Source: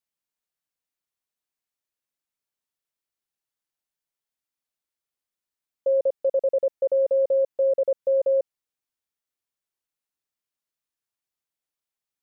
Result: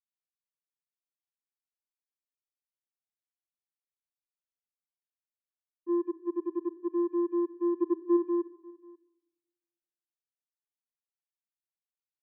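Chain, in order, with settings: gate -20 dBFS, range -18 dB; reverb removal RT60 0.59 s; 7.73–8.16 dynamic EQ 540 Hz, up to +5 dB, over -38 dBFS, Q 1.4; vocoder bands 8, square 346 Hz; on a send: echo 0.539 s -23.5 dB; on the sum: shoebox room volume 3700 m³, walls furnished, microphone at 0.71 m; gain -3 dB

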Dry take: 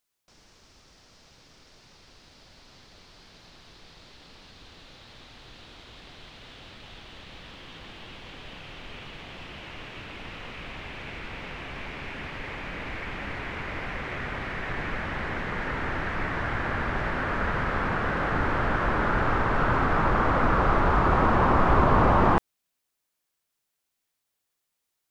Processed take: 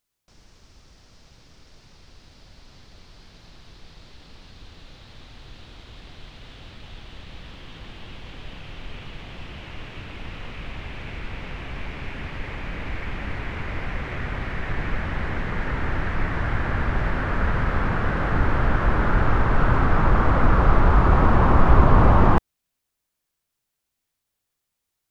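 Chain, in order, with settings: low shelf 160 Hz +10.5 dB

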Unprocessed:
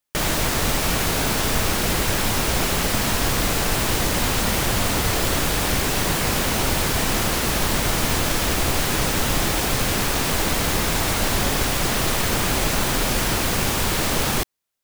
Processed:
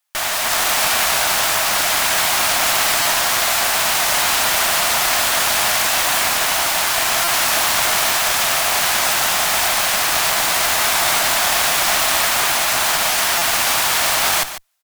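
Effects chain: in parallel at +3 dB: limiter -16 dBFS, peak gain reduction 8.5 dB; on the sum: elliptic high-pass 640 Hz, stop band 40 dB; AGC; one-sided clip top -25 dBFS; echo 0.146 s -12 dB; stuck buffer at 3.02/7.24/13.38, samples 256, times 5

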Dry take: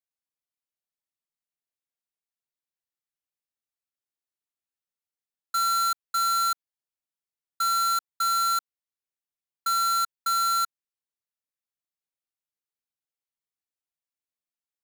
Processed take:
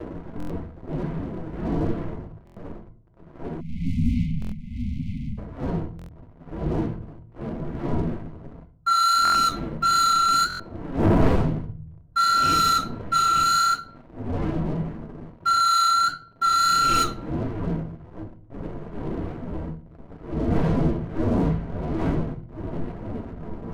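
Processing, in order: wind noise 310 Hz -35 dBFS; low-pass opened by the level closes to 1200 Hz, open at -18.5 dBFS; harmonic tremolo 3.6 Hz, depth 50%, crossover 1300 Hz; time stretch by phase-locked vocoder 1.6×; in parallel at -11 dB: soft clip -22.5 dBFS, distortion -16 dB; on the sum: notches 60/120/180/240/300 Hz; flange 1.6 Hz, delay 7.8 ms, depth 7.2 ms, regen -58%; sample leveller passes 3; on a send at -8 dB: ripple EQ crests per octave 1.9, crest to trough 10 dB + reverb RT60 0.50 s, pre-delay 3 ms; on the sum: spectral delete 3.61–5.38, 260–2000 Hz; stuck buffer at 0.38/2.45/4.4/5.97/9.23/10.48, samples 1024, times 4; gain +2 dB

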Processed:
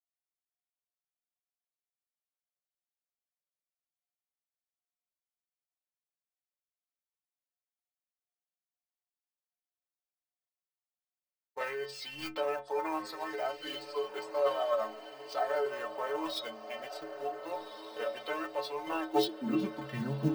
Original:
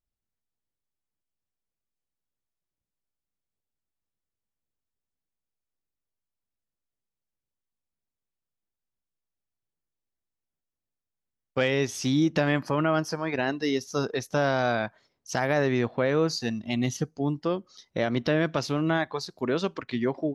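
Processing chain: dynamic EQ 370 Hz, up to +4 dB, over -34 dBFS, Q 1.2; high-pass sweep 830 Hz -> 150 Hz, 18.85–19.66; in parallel at -6 dB: sample gate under -30.5 dBFS; on the sum: metallic resonator 65 Hz, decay 0.69 s, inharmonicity 0.03; formant shift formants -4 st; on a send: diffused feedback echo 1.534 s, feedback 51%, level -11 dB

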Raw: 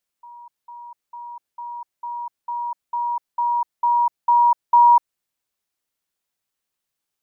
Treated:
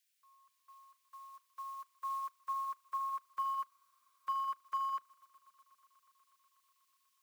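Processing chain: EQ curve 470 Hz 0 dB, 670 Hz -18 dB, 980 Hz -14 dB, 1400 Hz +9 dB, 2200 Hz +14 dB; in parallel at -7 dB: overloaded stage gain 34 dB; on the sum: limiter -37 dBFS, peak gain reduction 16.5 dB; frequency shift +130 Hz; on a send: swelling echo 0.122 s, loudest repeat 5, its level -13 dB; on the sum: spectral freeze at 3.72, 0.54 s; upward expander 2.5:1, over -53 dBFS; gain +7 dB

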